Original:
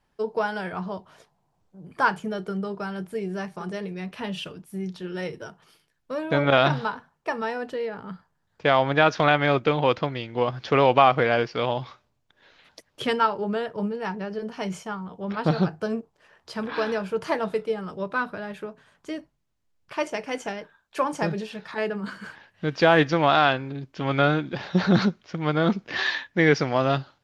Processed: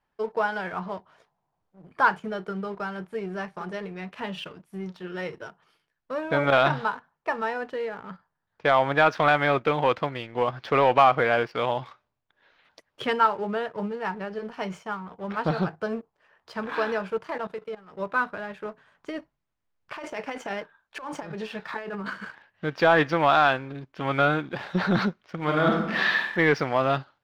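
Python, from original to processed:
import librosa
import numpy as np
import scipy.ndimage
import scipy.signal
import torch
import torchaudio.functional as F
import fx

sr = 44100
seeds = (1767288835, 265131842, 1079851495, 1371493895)

y = fx.level_steps(x, sr, step_db=15, at=(17.17, 17.96), fade=0.02)
y = fx.over_compress(y, sr, threshold_db=-32.0, ratio=-1.0, at=(18.65, 22.25))
y = fx.reverb_throw(y, sr, start_s=25.35, length_s=0.97, rt60_s=0.93, drr_db=0.5)
y = fx.high_shelf(y, sr, hz=6600.0, db=-8.5)
y = fx.leveller(y, sr, passes=1)
y = fx.peak_eq(y, sr, hz=1300.0, db=7.0, octaves=2.8)
y = F.gain(torch.from_numpy(y), -8.5).numpy()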